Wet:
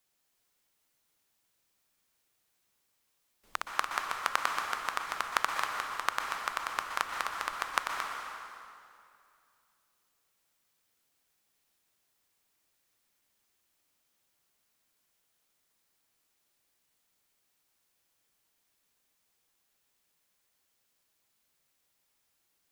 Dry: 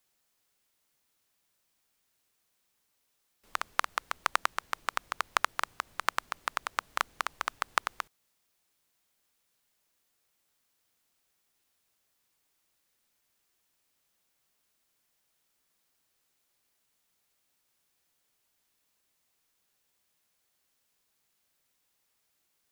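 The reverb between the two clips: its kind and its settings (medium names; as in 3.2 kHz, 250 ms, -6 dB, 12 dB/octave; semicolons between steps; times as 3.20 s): plate-style reverb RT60 2.5 s, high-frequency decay 0.8×, pre-delay 110 ms, DRR 2 dB; trim -2 dB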